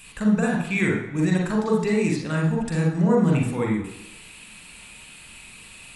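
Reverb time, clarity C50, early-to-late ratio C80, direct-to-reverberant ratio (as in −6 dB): 1.0 s, 4.0 dB, 8.0 dB, −1.5 dB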